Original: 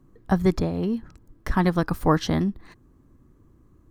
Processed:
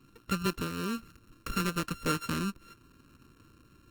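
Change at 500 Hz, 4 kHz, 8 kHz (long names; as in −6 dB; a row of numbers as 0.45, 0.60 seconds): −12.0, −1.0, +3.0 decibels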